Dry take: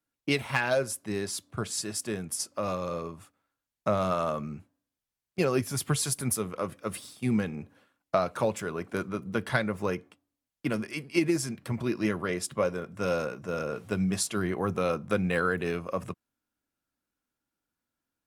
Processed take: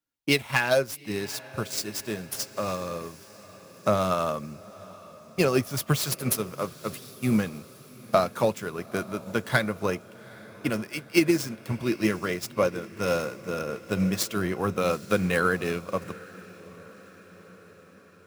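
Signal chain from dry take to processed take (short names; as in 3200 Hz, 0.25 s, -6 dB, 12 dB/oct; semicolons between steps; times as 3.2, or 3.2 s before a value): median filter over 5 samples; high shelf 4900 Hz +12 dB; in parallel at -11 dB: sine folder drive 6 dB, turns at -6 dBFS; on the sum: diffused feedback echo 0.829 s, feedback 61%, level -13.5 dB; upward expander 1.5:1, over -35 dBFS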